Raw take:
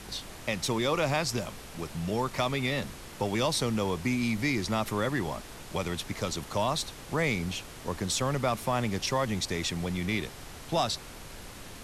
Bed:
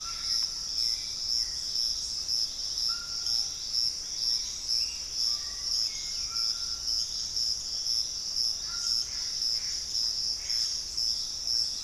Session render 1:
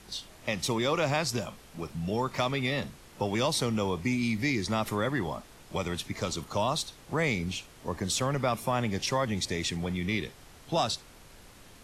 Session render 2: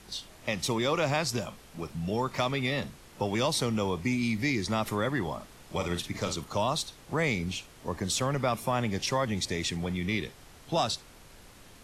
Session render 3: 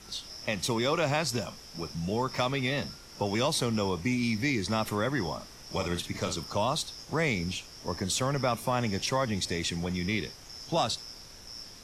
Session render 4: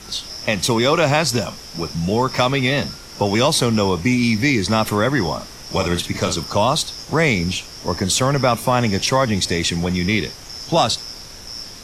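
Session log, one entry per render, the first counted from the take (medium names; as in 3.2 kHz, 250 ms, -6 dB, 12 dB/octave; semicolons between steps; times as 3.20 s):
noise print and reduce 8 dB
5.35–6.35 s: doubling 46 ms -7.5 dB
add bed -16.5 dB
trim +11.5 dB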